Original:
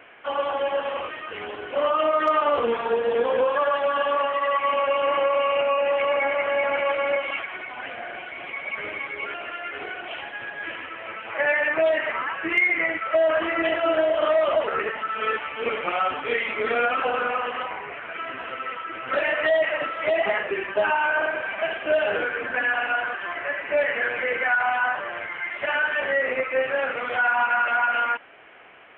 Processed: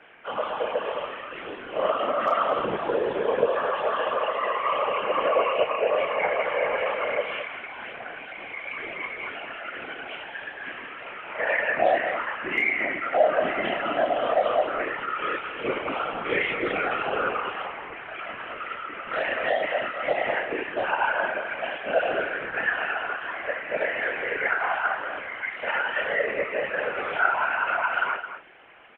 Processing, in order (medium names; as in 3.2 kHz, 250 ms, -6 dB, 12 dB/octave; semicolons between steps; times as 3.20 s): wow and flutter 29 cents; chorus voices 4, 0.69 Hz, delay 28 ms, depth 3.3 ms; whisper effect; echo from a far wall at 37 m, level -10 dB